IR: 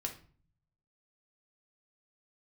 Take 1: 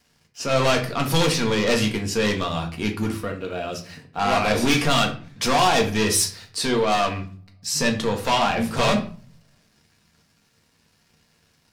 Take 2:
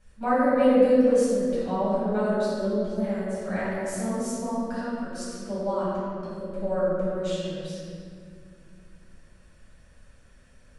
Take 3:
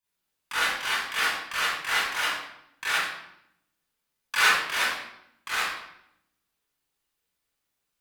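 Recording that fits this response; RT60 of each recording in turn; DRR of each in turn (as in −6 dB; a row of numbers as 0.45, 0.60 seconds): 1; 0.45, 2.2, 0.75 seconds; 2.0, −11.5, −11.0 decibels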